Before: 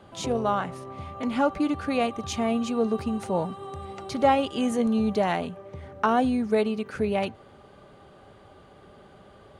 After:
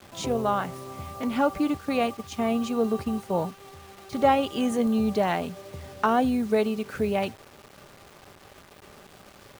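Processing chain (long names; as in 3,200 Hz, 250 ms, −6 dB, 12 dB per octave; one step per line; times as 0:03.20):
0:01.77–0:04.13: noise gate −30 dBFS, range −10 dB
bit reduction 8 bits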